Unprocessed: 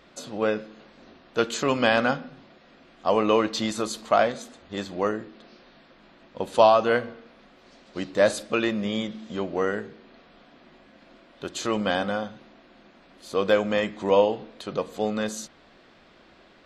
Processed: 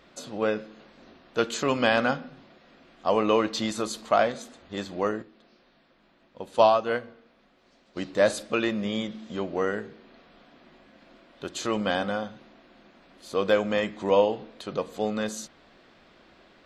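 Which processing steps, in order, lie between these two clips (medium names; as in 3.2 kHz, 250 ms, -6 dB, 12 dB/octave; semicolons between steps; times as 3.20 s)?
5.22–7.97 s: upward expansion 1.5:1, over -27 dBFS; trim -1.5 dB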